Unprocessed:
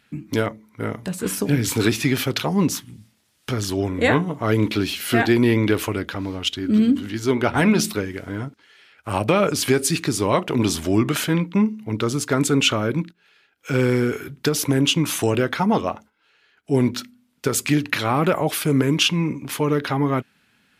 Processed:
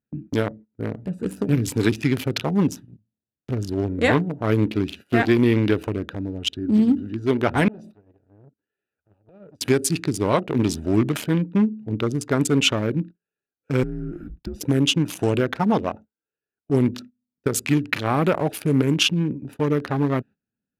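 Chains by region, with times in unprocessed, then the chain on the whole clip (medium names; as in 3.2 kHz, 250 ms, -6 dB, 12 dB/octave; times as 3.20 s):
7.68–9.61 s: compression 8:1, threshold -30 dBFS + transformer saturation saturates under 1.4 kHz
13.83–14.61 s: band-stop 1.4 kHz, Q 22 + compression 4:1, threshold -26 dBFS + frequency shift -88 Hz
whole clip: local Wiener filter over 41 samples; gate -39 dBFS, range -20 dB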